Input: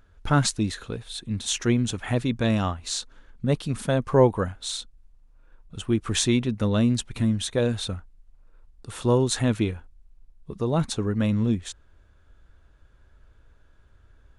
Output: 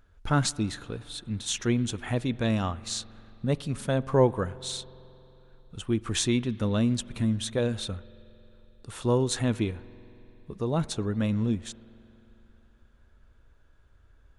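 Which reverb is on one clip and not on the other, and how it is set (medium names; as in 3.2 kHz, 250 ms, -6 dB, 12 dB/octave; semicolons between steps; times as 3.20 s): spring tank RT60 3.4 s, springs 45 ms, chirp 80 ms, DRR 19 dB; trim -3.5 dB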